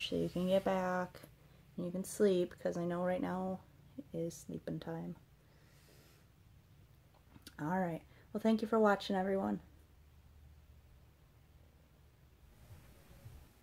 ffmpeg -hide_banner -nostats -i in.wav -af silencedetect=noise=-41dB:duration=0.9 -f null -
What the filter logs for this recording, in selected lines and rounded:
silence_start: 5.12
silence_end: 7.47 | silence_duration: 2.35
silence_start: 9.57
silence_end: 13.63 | silence_duration: 4.05